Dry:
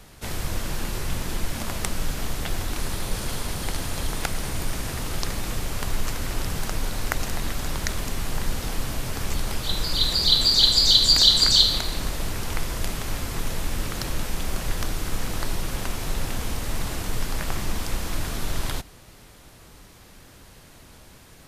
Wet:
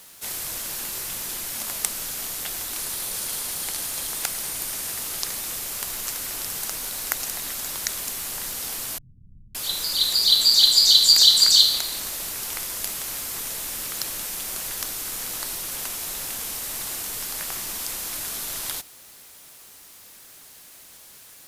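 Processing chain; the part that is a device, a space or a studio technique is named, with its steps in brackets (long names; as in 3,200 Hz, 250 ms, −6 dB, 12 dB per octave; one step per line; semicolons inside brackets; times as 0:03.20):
turntable without a phono preamp (RIAA equalisation recording; white noise bed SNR 28 dB)
0:08.98–0:09.55: inverse Chebyshev low-pass filter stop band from 740 Hz, stop band 70 dB
level −5 dB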